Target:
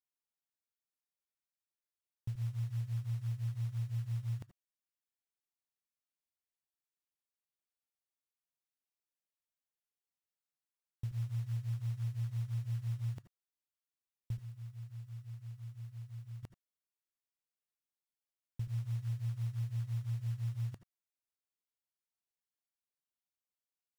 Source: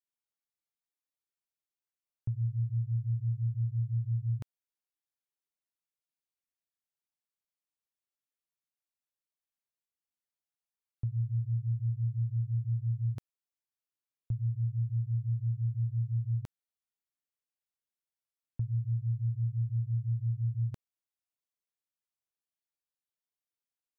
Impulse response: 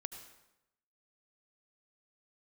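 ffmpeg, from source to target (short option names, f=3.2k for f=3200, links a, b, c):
-filter_complex "[0:a]asettb=1/sr,asplit=3[a][b][c];[a]atrim=end=14.374[d];[b]atrim=start=14.37:end=16.43,asetpts=PTS-STARTPTS,afade=t=in:d=0.004:c=qsin,afade=t=out:st=2.056:d=0.004:c=qsin,bass=f=250:g=-10,treble=f=4k:g=11[e];[c]atrim=start=16.426[f];[d][e]acrossfade=d=0.004:c1=hsin:c2=qsin[g];[g][f]acrossfade=d=0.004:c1=qsin:c2=hsin,acrusher=bits=6:mode=log:mix=0:aa=0.000001[h];[1:a]atrim=start_sample=2205,atrim=end_sample=3969[i];[h][i]afir=irnorm=-1:irlink=0,volume=-2.5dB"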